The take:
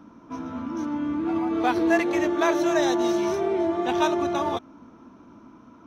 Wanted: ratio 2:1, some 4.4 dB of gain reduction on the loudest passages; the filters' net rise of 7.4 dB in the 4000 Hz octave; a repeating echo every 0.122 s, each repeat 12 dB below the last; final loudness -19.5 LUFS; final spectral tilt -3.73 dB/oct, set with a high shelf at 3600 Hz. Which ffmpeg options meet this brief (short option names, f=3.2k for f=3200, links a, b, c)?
-af "highshelf=f=3.6k:g=6,equalizer=f=4k:t=o:g=5,acompressor=threshold=-24dB:ratio=2,aecho=1:1:122|244|366:0.251|0.0628|0.0157,volume=7dB"